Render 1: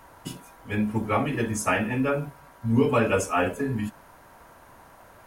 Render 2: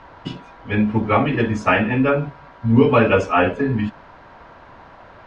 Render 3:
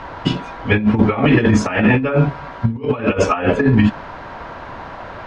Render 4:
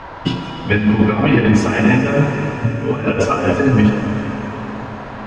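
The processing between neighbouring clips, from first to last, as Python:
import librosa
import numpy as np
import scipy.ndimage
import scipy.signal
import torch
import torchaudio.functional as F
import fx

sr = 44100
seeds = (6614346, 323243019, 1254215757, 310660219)

y1 = scipy.signal.sosfilt(scipy.signal.butter(4, 4300.0, 'lowpass', fs=sr, output='sos'), x)
y1 = F.gain(torch.from_numpy(y1), 7.5).numpy()
y2 = fx.over_compress(y1, sr, threshold_db=-21.0, ratio=-0.5)
y2 = F.gain(torch.from_numpy(y2), 7.0).numpy()
y3 = fx.rev_plate(y2, sr, seeds[0], rt60_s=4.7, hf_ratio=1.0, predelay_ms=0, drr_db=3.0)
y3 = F.gain(torch.from_numpy(y3), -1.0).numpy()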